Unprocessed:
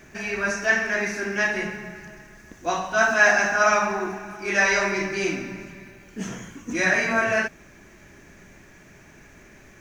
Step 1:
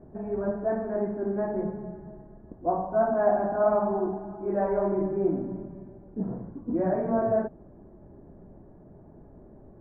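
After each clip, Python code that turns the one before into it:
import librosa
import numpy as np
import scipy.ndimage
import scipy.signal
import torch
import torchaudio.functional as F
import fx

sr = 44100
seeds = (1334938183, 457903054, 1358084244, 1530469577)

y = scipy.signal.sosfilt(scipy.signal.cheby2(4, 70, 3500.0, 'lowpass', fs=sr, output='sos'), x)
y = y * 10.0 ** (1.5 / 20.0)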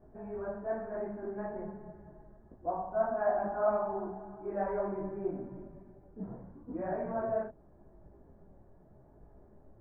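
y = fx.peak_eq(x, sr, hz=240.0, db=-8.0, octaves=2.5)
y = fx.detune_double(y, sr, cents=30)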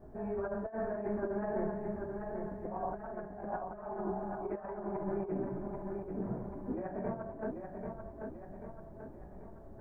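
y = fx.over_compress(x, sr, threshold_db=-39.0, ratio=-0.5)
y = fx.echo_feedback(y, sr, ms=788, feedback_pct=51, wet_db=-5.0)
y = y * 10.0 ** (1.0 / 20.0)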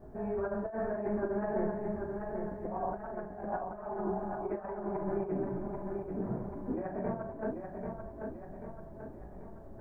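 y = fx.doubler(x, sr, ms=38.0, db=-12.0)
y = y * 10.0 ** (2.0 / 20.0)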